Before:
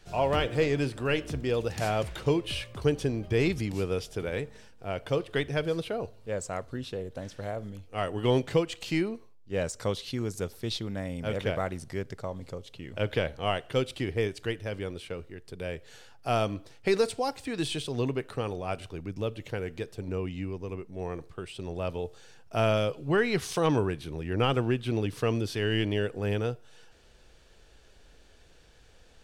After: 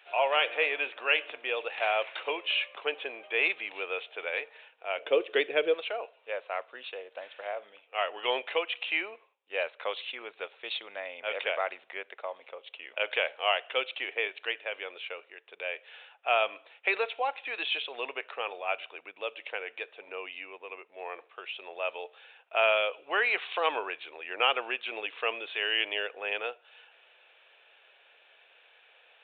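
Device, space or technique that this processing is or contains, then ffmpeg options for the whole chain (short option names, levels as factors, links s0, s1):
musical greeting card: -filter_complex "[0:a]asettb=1/sr,asplit=3[s0][s1][s2];[s0]atrim=end=4.984[s3];[s1]atrim=start=4.98:end=5.74,asetpts=PTS-STARTPTS,afade=t=in:d=0.004:c=qsin,afade=t=out:st=0.756:d=0.004:c=qsin,lowshelf=f=550:t=q:w=1.5:g=12[s4];[s2]atrim=start=5.736[s5];[s3][s4]acrossfade=d=0.004:c1=hsin:c2=qsin[s6];[s6][s5]acrossfade=d=0.004:c1=qsin:c2=hsin,aresample=8000,aresample=44100,highpass=f=580:w=0.5412,highpass=f=580:w=1.3066,equalizer=f=2500:t=o:w=0.41:g=9,volume=1.26"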